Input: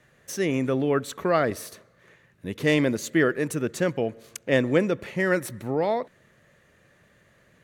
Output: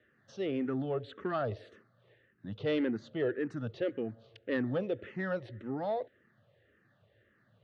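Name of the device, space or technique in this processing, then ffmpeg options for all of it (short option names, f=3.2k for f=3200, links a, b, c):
barber-pole phaser into a guitar amplifier: -filter_complex "[0:a]asettb=1/sr,asplit=3[a][b][c];[a]atrim=end=2.874[d];[b]atrim=start=2.87:end=3.48,asetpts=PTS-STARTPTS,afade=t=in:d=0.004:c=qsin,afade=t=out:st=0.606:d=0.004:c=qsin,highshelf=f=4.9k:g=-8.5[e];[c]atrim=start=3.476[f];[d][e]acrossfade=d=0.004:c1=hsin:c2=qsin[g];[g][f]acrossfade=d=0.004:c1=qsin:c2=hsin,asplit=2[h][i];[i]afreqshift=-1.8[j];[h][j]amix=inputs=2:normalize=1,asoftclip=type=tanh:threshold=-18dB,highpass=85,equalizer=f=110:t=q:w=4:g=8,equalizer=f=160:t=q:w=4:g=-7,equalizer=f=1k:t=q:w=4:g=-9,equalizer=f=2.3k:t=q:w=4:g=-10,lowpass=f=3.6k:w=0.5412,lowpass=f=3.6k:w=1.3066,volume=-4.5dB"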